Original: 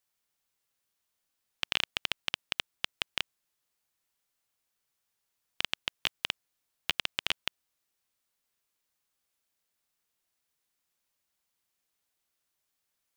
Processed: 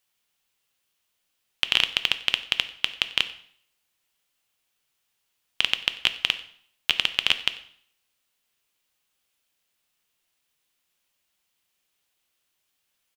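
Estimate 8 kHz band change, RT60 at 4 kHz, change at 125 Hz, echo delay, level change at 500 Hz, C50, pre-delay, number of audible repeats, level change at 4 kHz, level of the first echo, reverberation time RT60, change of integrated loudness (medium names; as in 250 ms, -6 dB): +5.5 dB, 0.55 s, +4.5 dB, 92 ms, +5.0 dB, 14.0 dB, 4 ms, 1, +10.5 dB, -22.0 dB, 0.55 s, +10.0 dB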